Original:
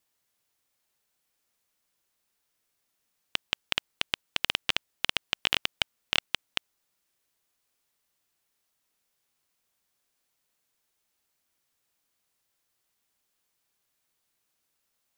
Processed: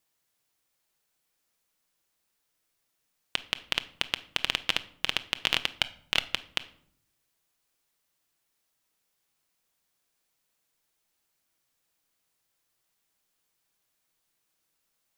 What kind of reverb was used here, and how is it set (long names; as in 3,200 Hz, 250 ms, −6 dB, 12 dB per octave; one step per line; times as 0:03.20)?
rectangular room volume 960 cubic metres, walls furnished, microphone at 0.64 metres